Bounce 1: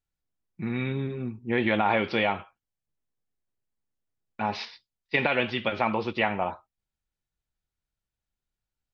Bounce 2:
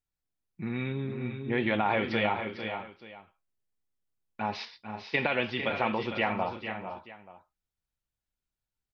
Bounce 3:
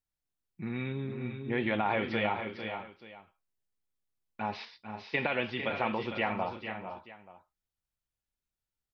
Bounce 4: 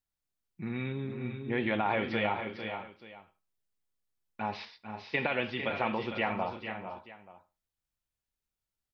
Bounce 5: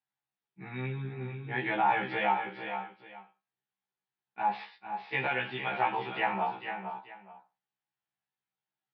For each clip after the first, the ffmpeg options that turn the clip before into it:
ffmpeg -i in.wav -af "aecho=1:1:442|452|489|882:0.126|0.355|0.237|0.106,volume=-3.5dB" out.wav
ffmpeg -i in.wav -filter_complex "[0:a]acrossover=split=4200[link_01][link_02];[link_02]acompressor=threshold=-53dB:ratio=4:attack=1:release=60[link_03];[link_01][link_03]amix=inputs=2:normalize=0,volume=-2.5dB" out.wav
ffmpeg -i in.wav -filter_complex "[0:a]asplit=2[link_01][link_02];[link_02]adelay=78,lowpass=frequency=1900:poles=1,volume=-18.5dB,asplit=2[link_03][link_04];[link_04]adelay=78,lowpass=frequency=1900:poles=1,volume=0.23[link_05];[link_01][link_03][link_05]amix=inputs=3:normalize=0" out.wav
ffmpeg -i in.wav -af "highpass=frequency=140:width=0.5412,highpass=frequency=140:width=1.3066,equalizer=frequency=150:width_type=q:width=4:gain=4,equalizer=frequency=260:width_type=q:width=4:gain=-8,equalizer=frequency=560:width_type=q:width=4:gain=-7,equalizer=frequency=810:width_type=q:width=4:gain=9,equalizer=frequency=1700:width_type=q:width=4:gain=4,lowpass=frequency=3800:width=0.5412,lowpass=frequency=3800:width=1.3066,afftfilt=real='re*1.73*eq(mod(b,3),0)':imag='im*1.73*eq(mod(b,3),0)':win_size=2048:overlap=0.75,volume=2dB" out.wav

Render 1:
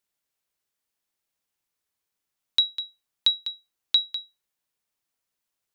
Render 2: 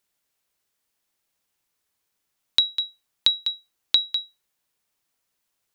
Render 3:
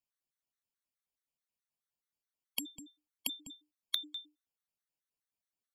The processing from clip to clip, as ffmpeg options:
ffmpeg -i in.wav -af "acompressor=threshold=-21dB:ratio=6,volume=6dB" out.wav
ffmpeg -i in.wav -af "aeval=exprs='0.668*(cos(1*acos(clip(val(0)/0.668,-1,1)))-cos(1*PI/2))+0.299*(cos(3*acos(clip(val(0)/0.668,-1,1)))-cos(3*PI/2))+0.0211*(cos(8*acos(clip(val(0)/0.668,-1,1)))-cos(8*PI/2))':channel_layout=same,afreqshift=-300,afftfilt=real='re*gt(sin(2*PI*4.7*pts/sr)*(1-2*mod(floor(b*sr/1024/1100),2)),0)':imag='im*gt(sin(2*PI*4.7*pts/sr)*(1-2*mod(floor(b*sr/1024/1100),2)),0)':win_size=1024:overlap=0.75,volume=-6dB" out.wav

